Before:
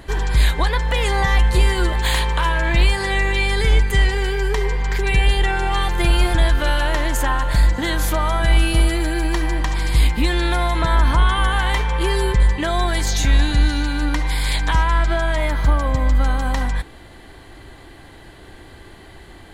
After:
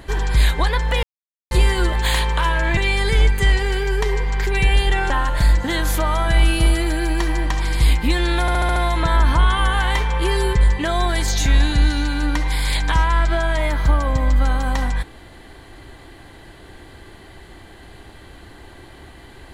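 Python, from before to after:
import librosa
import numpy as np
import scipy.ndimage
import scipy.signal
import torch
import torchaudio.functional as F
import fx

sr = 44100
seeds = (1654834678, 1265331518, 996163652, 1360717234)

y = fx.edit(x, sr, fx.silence(start_s=1.03, length_s=0.48),
    fx.cut(start_s=2.77, length_s=0.52),
    fx.cut(start_s=5.62, length_s=1.62),
    fx.stutter(start_s=10.55, slice_s=0.07, count=6), tone=tone)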